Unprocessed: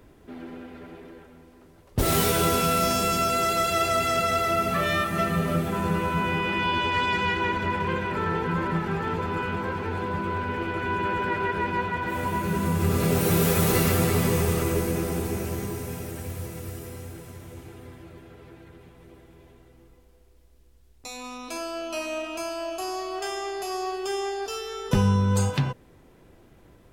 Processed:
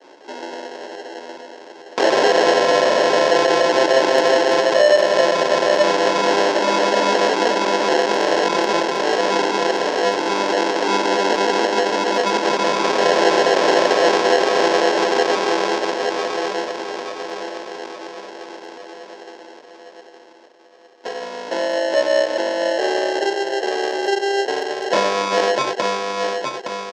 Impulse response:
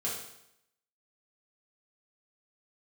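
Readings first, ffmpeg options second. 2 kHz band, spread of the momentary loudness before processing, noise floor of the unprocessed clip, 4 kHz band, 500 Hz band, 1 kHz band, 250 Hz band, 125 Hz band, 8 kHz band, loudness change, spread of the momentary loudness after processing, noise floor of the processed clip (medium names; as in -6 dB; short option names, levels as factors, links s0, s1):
+8.5 dB, 18 LU, -55 dBFS, +11.0 dB, +13.0 dB, +8.5 dB, +3.5 dB, -14.5 dB, +3.5 dB, +8.0 dB, 17 LU, -43 dBFS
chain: -filter_complex "[0:a]asplit=2[s0][s1];[s1]adelay=865,lowpass=f=1800:p=1,volume=0.501,asplit=2[s2][s3];[s3]adelay=865,lowpass=f=1800:p=1,volume=0.48,asplit=2[s4][s5];[s5]adelay=865,lowpass=f=1800:p=1,volume=0.48,asplit=2[s6][s7];[s7]adelay=865,lowpass=f=1800:p=1,volume=0.48,asplit=2[s8][s9];[s9]adelay=865,lowpass=f=1800:p=1,volume=0.48,asplit=2[s10][s11];[s11]adelay=865,lowpass=f=1800:p=1,volume=0.48[s12];[s0][s2][s4][s6][s8][s10][s12]amix=inputs=7:normalize=0,aresample=16000,asoftclip=type=hard:threshold=0.1,aresample=44100,agate=range=0.0224:threshold=0.00251:ratio=3:detection=peak,asplit=2[s13][s14];[s14]adelay=14,volume=0.335[s15];[s13][s15]amix=inputs=2:normalize=0,acrusher=samples=37:mix=1:aa=0.000001,highpass=f=430:w=0.5412,highpass=f=430:w=1.3066,equalizer=f=440:t=q:w=4:g=-6,equalizer=f=760:t=q:w=4:g=-8,equalizer=f=1400:t=q:w=4:g=-9,equalizer=f=2000:t=q:w=4:g=-8,equalizer=f=2900:t=q:w=4:g=-8,equalizer=f=4100:t=q:w=4:g=-7,lowpass=f=5100:w=0.5412,lowpass=f=5100:w=1.3066,alimiter=level_in=10.6:limit=0.891:release=50:level=0:latency=1,volume=0.891" -ar 48000 -c:a aac -b:a 192k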